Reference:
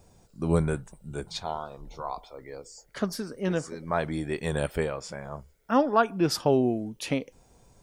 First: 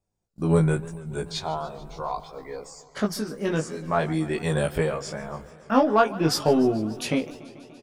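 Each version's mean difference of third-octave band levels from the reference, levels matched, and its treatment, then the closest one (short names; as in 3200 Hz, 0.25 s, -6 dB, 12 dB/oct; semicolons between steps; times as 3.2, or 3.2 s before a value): 4.0 dB: in parallel at -6 dB: soft clip -20.5 dBFS, distortion -11 dB; on the sum: gate -44 dBFS, range -28 dB; doubler 19 ms -2 dB; warbling echo 0.145 s, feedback 77%, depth 157 cents, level -19.5 dB; gain -1.5 dB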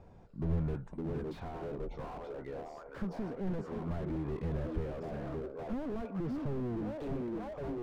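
9.5 dB: delay with a stepping band-pass 0.559 s, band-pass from 310 Hz, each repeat 0.7 oct, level -6 dB; compressor 2.5:1, threshold -31 dBFS, peak gain reduction 10.5 dB; LPF 1900 Hz 12 dB/oct; slew limiter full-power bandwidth 4.5 Hz; gain +2 dB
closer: first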